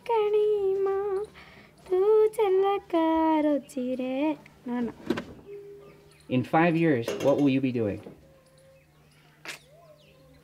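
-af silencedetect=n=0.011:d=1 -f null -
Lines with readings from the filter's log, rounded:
silence_start: 8.13
silence_end: 9.45 | silence_duration: 1.33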